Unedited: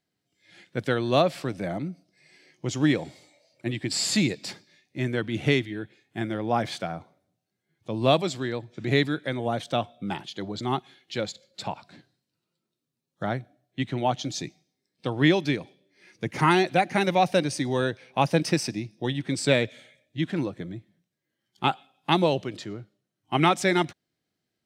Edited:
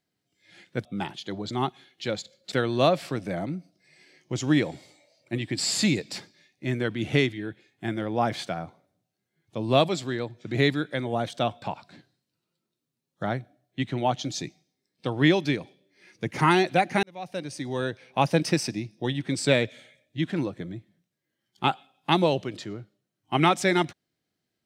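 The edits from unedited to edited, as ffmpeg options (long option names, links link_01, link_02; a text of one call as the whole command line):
ffmpeg -i in.wav -filter_complex "[0:a]asplit=5[link_01][link_02][link_03][link_04][link_05];[link_01]atrim=end=0.852[link_06];[link_02]atrim=start=9.948:end=11.622[link_07];[link_03]atrim=start=0.848:end=9.952[link_08];[link_04]atrim=start=11.618:end=17.03,asetpts=PTS-STARTPTS,afade=type=out:start_time=5.408:duration=0.004:curve=hsin[link_09];[link_05]atrim=start=17.03,asetpts=PTS-STARTPTS,afade=type=in:duration=1.16[link_10];[link_06][link_07]acrossfade=duration=0.004:curve1=hsin:curve2=hsin[link_11];[link_11][link_08]acrossfade=duration=0.004:curve1=hsin:curve2=hsin[link_12];[link_09][link_10]concat=n=2:v=0:a=1[link_13];[link_12][link_13]acrossfade=duration=0.004:curve1=hsin:curve2=hsin" out.wav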